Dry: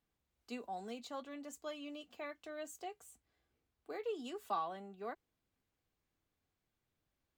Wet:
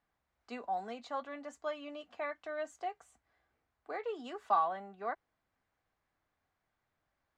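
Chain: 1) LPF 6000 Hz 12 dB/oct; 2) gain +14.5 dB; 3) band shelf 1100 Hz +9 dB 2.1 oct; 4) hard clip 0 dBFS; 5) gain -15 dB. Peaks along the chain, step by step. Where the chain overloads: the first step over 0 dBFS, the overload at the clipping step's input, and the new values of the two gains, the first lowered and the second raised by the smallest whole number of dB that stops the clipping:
-25.0, -10.5, -2.0, -2.0, -17.0 dBFS; no overload

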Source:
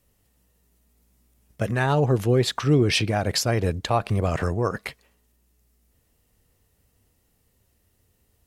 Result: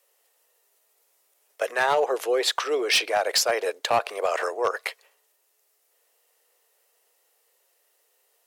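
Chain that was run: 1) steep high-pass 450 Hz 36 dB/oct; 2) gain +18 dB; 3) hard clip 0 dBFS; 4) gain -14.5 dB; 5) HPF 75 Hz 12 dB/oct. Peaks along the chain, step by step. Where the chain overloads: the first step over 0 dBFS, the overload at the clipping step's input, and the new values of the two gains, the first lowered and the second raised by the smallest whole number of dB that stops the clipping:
-10.5, +7.5, 0.0, -14.5, -13.0 dBFS; step 2, 7.5 dB; step 2 +10 dB, step 4 -6.5 dB

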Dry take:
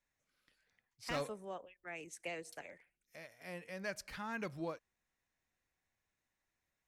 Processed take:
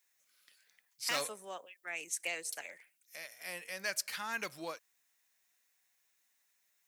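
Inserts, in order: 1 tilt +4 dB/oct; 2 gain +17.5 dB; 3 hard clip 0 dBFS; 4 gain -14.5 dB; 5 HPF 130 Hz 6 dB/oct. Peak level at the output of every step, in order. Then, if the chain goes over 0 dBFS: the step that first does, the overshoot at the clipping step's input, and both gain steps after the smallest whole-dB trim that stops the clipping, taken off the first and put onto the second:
-21.0, -3.5, -3.5, -18.0, -18.0 dBFS; no overload

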